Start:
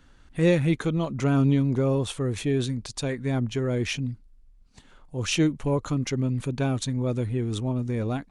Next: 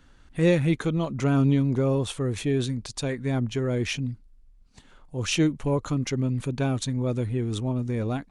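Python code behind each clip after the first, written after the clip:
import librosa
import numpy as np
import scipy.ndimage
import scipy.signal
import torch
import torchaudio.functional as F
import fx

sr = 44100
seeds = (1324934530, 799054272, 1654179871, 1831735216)

y = x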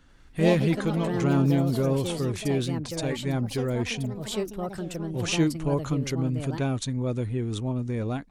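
y = fx.echo_pitch(x, sr, ms=91, semitones=4, count=3, db_per_echo=-6.0)
y = F.gain(torch.from_numpy(y), -1.5).numpy()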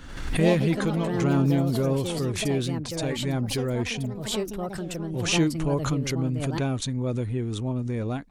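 y = fx.pre_swell(x, sr, db_per_s=58.0)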